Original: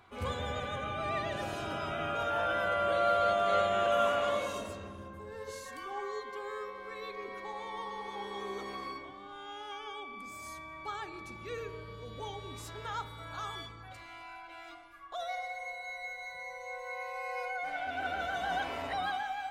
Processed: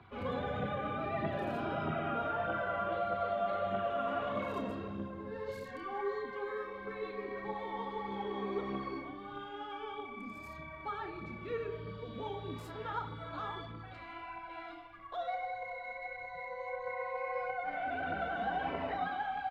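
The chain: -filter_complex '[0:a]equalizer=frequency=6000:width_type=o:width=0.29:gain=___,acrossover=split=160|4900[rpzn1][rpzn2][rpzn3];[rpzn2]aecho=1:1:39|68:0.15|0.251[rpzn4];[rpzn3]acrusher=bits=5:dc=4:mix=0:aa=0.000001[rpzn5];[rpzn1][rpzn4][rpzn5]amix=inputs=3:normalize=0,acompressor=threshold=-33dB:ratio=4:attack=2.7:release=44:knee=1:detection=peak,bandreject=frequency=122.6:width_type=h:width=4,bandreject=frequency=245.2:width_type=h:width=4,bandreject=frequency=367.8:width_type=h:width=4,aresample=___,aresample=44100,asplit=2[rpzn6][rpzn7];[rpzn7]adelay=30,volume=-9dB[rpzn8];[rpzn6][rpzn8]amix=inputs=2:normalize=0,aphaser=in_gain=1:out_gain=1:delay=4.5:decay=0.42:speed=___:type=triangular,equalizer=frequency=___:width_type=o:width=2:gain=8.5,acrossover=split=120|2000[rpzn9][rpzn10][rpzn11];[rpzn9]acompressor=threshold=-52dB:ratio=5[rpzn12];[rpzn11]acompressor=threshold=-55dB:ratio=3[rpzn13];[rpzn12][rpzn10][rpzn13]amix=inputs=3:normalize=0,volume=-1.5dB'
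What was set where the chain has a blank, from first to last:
-6.5, 32000, 1.6, 170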